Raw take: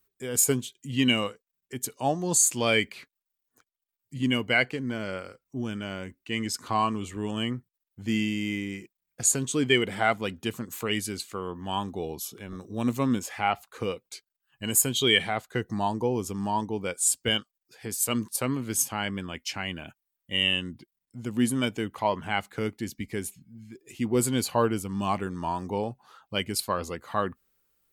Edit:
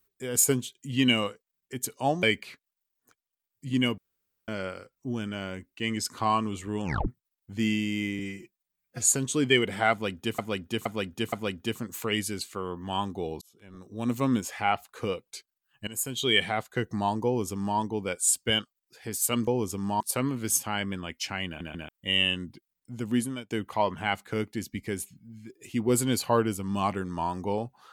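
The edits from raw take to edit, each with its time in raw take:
2.23–2.72 s: delete
4.47–4.97 s: room tone
7.32 s: tape stop 0.25 s
8.68–9.27 s: stretch 1.5×
10.11–10.58 s: loop, 4 plays
12.20–13.03 s: fade in
14.66–15.28 s: fade in linear, from -15 dB
16.04–16.57 s: copy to 18.26 s
19.72 s: stutter in place 0.14 s, 3 plays
21.34–21.76 s: fade out linear

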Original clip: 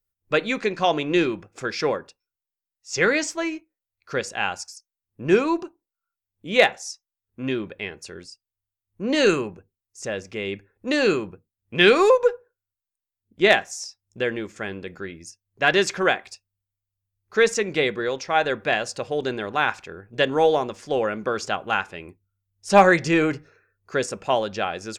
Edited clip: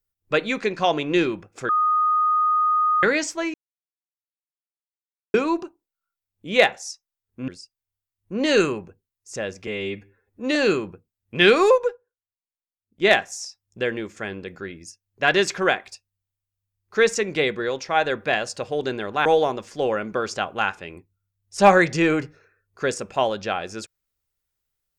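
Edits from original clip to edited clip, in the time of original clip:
1.69–3.03 s: bleep 1.24 kHz -16.5 dBFS
3.54–5.34 s: mute
7.48–8.17 s: delete
10.36–10.95 s: stretch 1.5×
12.14–13.49 s: dip -14 dB, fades 0.23 s
19.65–20.37 s: delete

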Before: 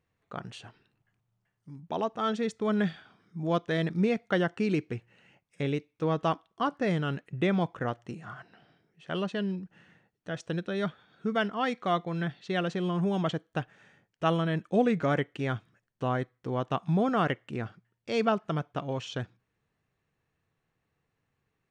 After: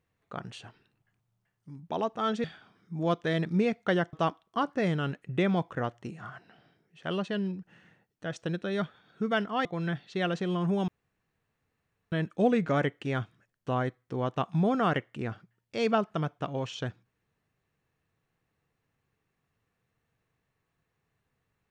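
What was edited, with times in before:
2.44–2.88 s: delete
4.57–6.17 s: delete
11.69–11.99 s: delete
13.22–14.46 s: room tone

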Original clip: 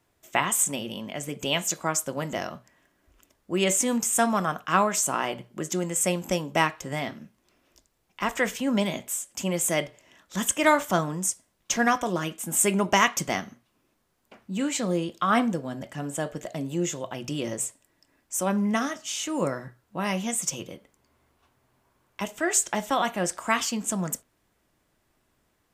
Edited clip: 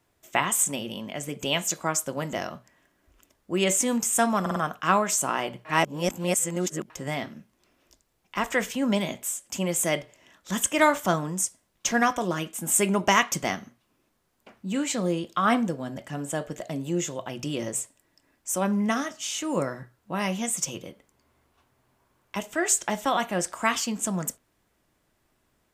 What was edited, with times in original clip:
4.41 s: stutter 0.05 s, 4 plays
5.50–6.75 s: reverse

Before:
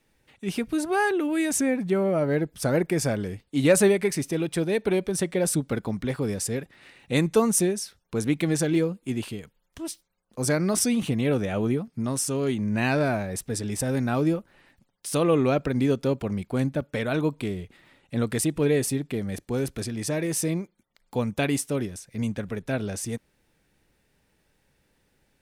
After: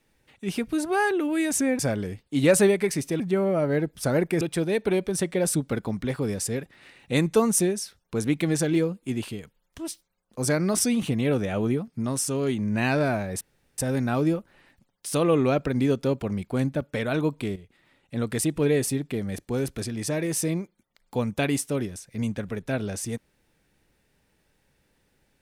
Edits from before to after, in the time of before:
1.79–3.00 s: move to 4.41 s
13.41–13.78 s: room tone
17.56–18.48 s: fade in, from -12 dB

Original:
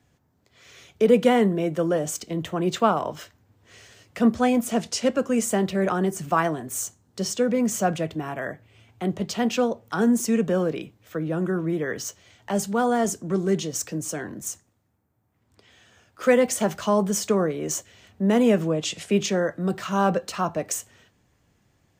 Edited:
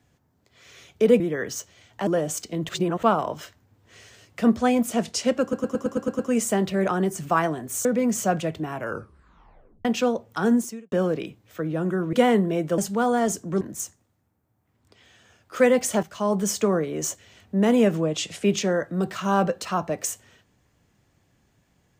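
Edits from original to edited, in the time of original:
1.20–1.85 s: swap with 11.69–12.56 s
2.47–2.81 s: reverse
5.20 s: stutter 0.11 s, 8 plays
6.86–7.41 s: delete
8.29 s: tape stop 1.12 s
10.11–10.48 s: fade out quadratic
13.39–14.28 s: delete
16.70–17.07 s: fade in, from -14 dB

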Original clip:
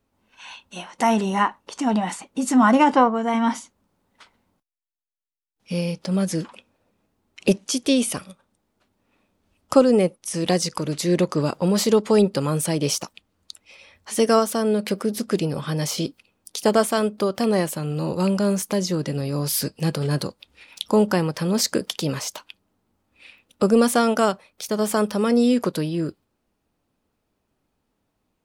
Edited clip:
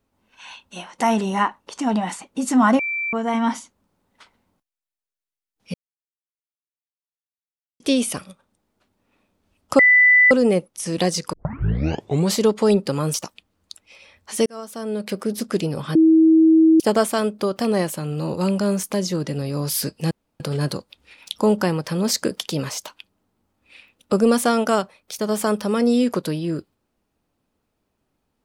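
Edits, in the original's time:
2.79–3.13 s: bleep 2.34 kHz -22 dBFS
5.74–7.80 s: mute
9.79 s: add tone 1.99 kHz -9.5 dBFS 0.52 s
10.81 s: tape start 1.01 s
12.62–12.93 s: delete
14.25–15.12 s: fade in
15.74–16.59 s: bleep 321 Hz -9.5 dBFS
19.90 s: insert room tone 0.29 s

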